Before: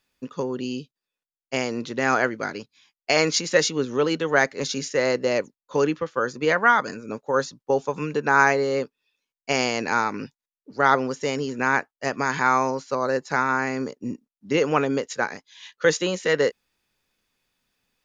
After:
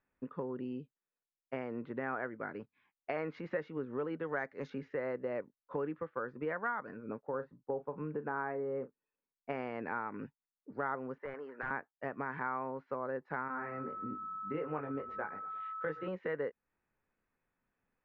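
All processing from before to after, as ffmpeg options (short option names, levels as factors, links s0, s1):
-filter_complex "[0:a]asettb=1/sr,asplit=3[s0][s1][s2];[s0]atrim=end=4.234[s3];[s1]atrim=start=4.23:end=4.7,asetpts=PTS-STARTPTS,afade=t=in:d=0.004:c=qsin,afade=t=out:st=0.466:d=0.004:c=qsin,lowpass=f=6500:t=q:w=3.4,aemphasis=mode=production:type=50fm[s4];[s2]atrim=start=4.696[s5];[s3][s4]acrossfade=d=0.004:c1=hsin:c2=qsin[s6];[s6][s5]acrossfade=d=0.004:c1=qsin:c2=hsin,asettb=1/sr,asplit=3[s7][s8][s9];[s7]atrim=end=7.274[s10];[s8]atrim=start=7.27:end=9.5,asetpts=PTS-STARTPTS,afade=t=in:d=0.004:c=qsin,afade=t=out:st=2.226:d=0.004:c=qsin,lowpass=f=1000:p=1,asplit=2[s11][s12];[s12]adelay=39,volume=0.211[s13];[s11][s13]amix=inputs=2:normalize=0,atrim=end_sample=98343[s14];[s9]atrim=start=9.496[s15];[s10][s14]acrossfade=d=0.004:c1=hsin:c2=qsin[s16];[s16][s15]acrossfade=d=0.004:c1=qsin:c2=hsin,asettb=1/sr,asplit=3[s17][s18][s19];[s17]atrim=end=11.184[s20];[s18]atrim=start=11.18:end=11.71,asetpts=PTS-STARTPTS,afade=t=in:d=0.004:c=qsin,afade=t=out:st=0.526:d=0.004:c=qsin,highpass=730,lowpass=7000,aeval=exprs='(mod(7.94*val(0)+1,2)-1)/7.94':c=same,highshelf=f=2200:t=q:w=1.5:g=-7[s21];[s19]atrim=start=11.706[s22];[s20][s21]acrossfade=d=0.004:c1=hsin:c2=qsin[s23];[s23][s22]acrossfade=d=0.004:c1=qsin:c2=hsin,asettb=1/sr,asplit=3[s24][s25][s26];[s24]atrim=end=13.484[s27];[s25]atrim=start=13.48:end=16.08,asetpts=PTS-STARTPTS,afade=t=in:d=0.004:c=qsin,afade=t=out:st=2.596:d=0.004:c=qsin,flanger=delay=19:depth=2.4:speed=1.7,aeval=exprs='val(0)+0.0224*sin(2*PI*1300*n/s)':c=same,asplit=4[s28][s29][s30][s31];[s29]adelay=115,afreqshift=-32,volume=0.0944[s32];[s30]adelay=230,afreqshift=-64,volume=0.0437[s33];[s31]adelay=345,afreqshift=-96,volume=0.02[s34];[s28][s32][s33][s34]amix=inputs=4:normalize=0,atrim=end_sample=114660[s35];[s26]atrim=start=16.076[s36];[s27][s35]acrossfade=d=0.004:c1=hsin:c2=qsin[s37];[s37][s36]acrossfade=d=0.004:c1=qsin:c2=hsin,lowpass=f=1900:w=0.5412,lowpass=f=1900:w=1.3066,acompressor=threshold=0.0224:ratio=2.5,volume=0.531"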